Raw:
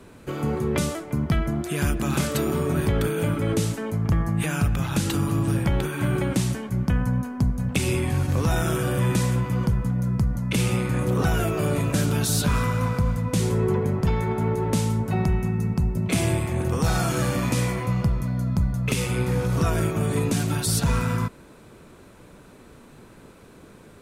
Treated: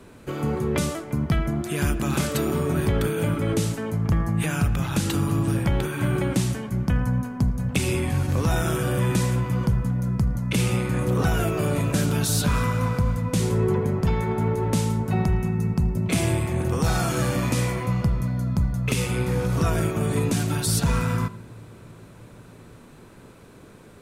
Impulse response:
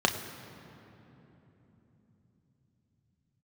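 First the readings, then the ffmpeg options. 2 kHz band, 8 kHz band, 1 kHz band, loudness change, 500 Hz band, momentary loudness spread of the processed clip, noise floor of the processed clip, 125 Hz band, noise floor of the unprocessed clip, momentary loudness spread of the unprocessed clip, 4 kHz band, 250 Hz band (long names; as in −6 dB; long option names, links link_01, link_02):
0.0 dB, 0.0 dB, 0.0 dB, 0.0 dB, 0.0 dB, 3 LU, −47 dBFS, 0.0 dB, −49 dBFS, 3 LU, 0.0 dB, 0.0 dB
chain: -filter_complex "[0:a]asplit=2[link_01][link_02];[1:a]atrim=start_sample=2205,adelay=79[link_03];[link_02][link_03]afir=irnorm=-1:irlink=0,volume=-30.5dB[link_04];[link_01][link_04]amix=inputs=2:normalize=0"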